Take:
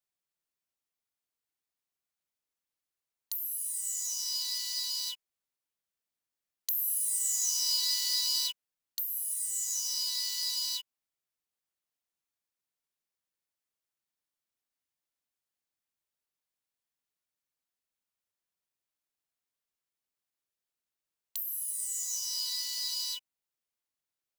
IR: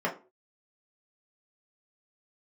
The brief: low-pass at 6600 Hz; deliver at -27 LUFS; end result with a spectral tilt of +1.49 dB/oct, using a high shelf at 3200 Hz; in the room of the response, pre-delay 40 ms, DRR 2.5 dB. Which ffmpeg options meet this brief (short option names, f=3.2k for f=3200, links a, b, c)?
-filter_complex "[0:a]lowpass=6.6k,highshelf=f=3.2k:g=8.5,asplit=2[a][b];[1:a]atrim=start_sample=2205,adelay=40[c];[b][c]afir=irnorm=-1:irlink=0,volume=-12.5dB[d];[a][d]amix=inputs=2:normalize=0"